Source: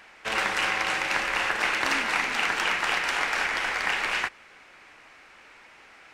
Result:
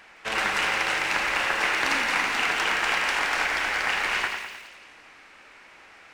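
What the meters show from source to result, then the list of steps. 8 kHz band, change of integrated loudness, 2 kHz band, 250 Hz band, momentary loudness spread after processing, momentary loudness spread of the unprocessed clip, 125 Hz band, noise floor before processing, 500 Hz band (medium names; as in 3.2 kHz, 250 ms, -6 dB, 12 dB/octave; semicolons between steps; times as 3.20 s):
+1.5 dB, +1.5 dB, +1.5 dB, +1.0 dB, 5 LU, 3 LU, +1.0 dB, -53 dBFS, +1.0 dB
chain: on a send: two-band feedback delay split 2.5 kHz, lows 103 ms, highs 170 ms, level -6 dB; on the sum: bit-crushed delay 83 ms, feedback 35%, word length 7-bit, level -12 dB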